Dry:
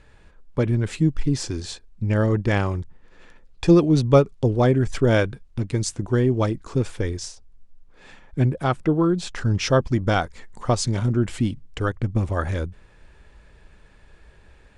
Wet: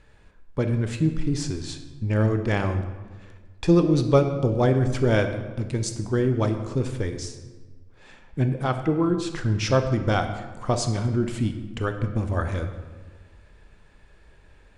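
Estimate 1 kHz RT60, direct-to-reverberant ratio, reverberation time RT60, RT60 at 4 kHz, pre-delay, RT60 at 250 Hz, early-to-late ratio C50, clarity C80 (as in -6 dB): 1.3 s, 6.5 dB, 1.4 s, 0.85 s, 18 ms, 1.7 s, 8.5 dB, 10.5 dB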